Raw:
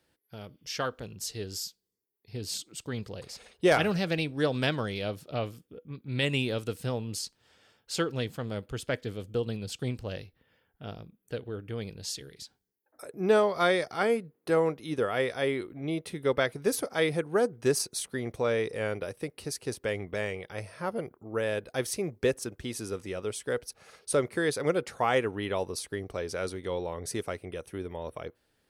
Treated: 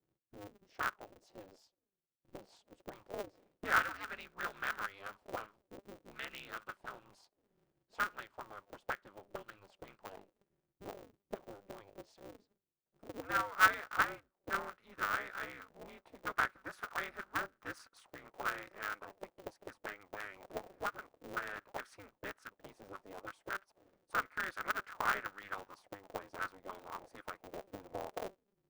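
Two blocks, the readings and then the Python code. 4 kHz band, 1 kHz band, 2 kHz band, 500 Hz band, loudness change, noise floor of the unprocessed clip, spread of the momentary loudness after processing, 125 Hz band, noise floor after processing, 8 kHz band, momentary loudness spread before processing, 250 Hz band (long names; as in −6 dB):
−13.5 dB, −3.0 dB, −2.0 dB, −19.0 dB, −8.5 dB, −75 dBFS, 19 LU, −23.0 dB, below −85 dBFS, −16.5 dB, 14 LU, −19.5 dB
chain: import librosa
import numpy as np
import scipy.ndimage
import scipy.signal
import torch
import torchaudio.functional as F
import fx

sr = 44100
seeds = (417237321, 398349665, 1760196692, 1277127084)

y = fx.auto_wah(x, sr, base_hz=230.0, top_hz=1400.0, q=9.7, full_db=-28.5, direction='up')
y = y * np.sign(np.sin(2.0 * np.pi * 100.0 * np.arange(len(y)) / sr))
y = y * librosa.db_to_amplitude(5.5)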